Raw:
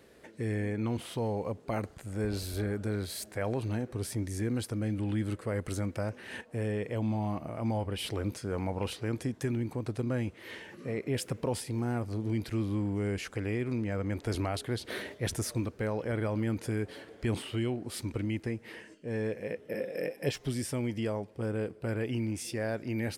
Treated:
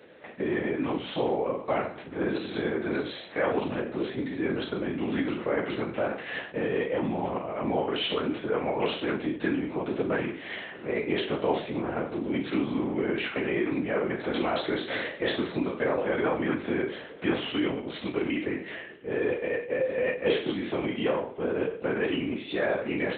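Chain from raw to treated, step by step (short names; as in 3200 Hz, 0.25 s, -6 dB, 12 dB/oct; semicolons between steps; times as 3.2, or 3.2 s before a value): spectral trails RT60 0.52 s; LPC vocoder at 8 kHz whisper; HPF 250 Hz 12 dB/oct; gain +7 dB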